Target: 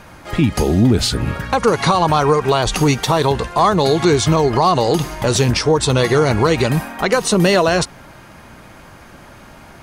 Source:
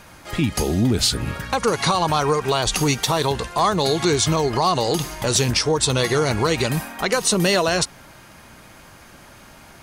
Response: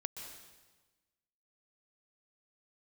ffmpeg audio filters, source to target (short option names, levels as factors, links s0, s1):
-af "highshelf=f=2800:g=-8.5,volume=2"